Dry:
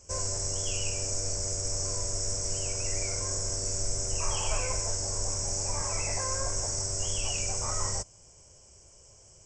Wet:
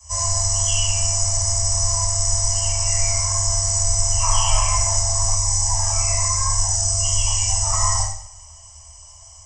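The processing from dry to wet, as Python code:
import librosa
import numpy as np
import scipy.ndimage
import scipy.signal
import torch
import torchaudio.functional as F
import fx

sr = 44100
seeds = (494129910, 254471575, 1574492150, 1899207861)

y = scipy.signal.sosfilt(scipy.signal.cheby1(5, 1.0, [110.0, 570.0], 'bandstop', fs=sr, output='sos'), x)
y = y + 0.98 * np.pad(y, (int(1.0 * sr / 1000.0), 0))[:len(y)]
y = fx.rev_double_slope(y, sr, seeds[0], early_s=0.58, late_s=2.0, knee_db=-26, drr_db=-8.5)
y = fx.notch_cascade(y, sr, direction='falling', hz=1.1, at=(5.35, 7.73))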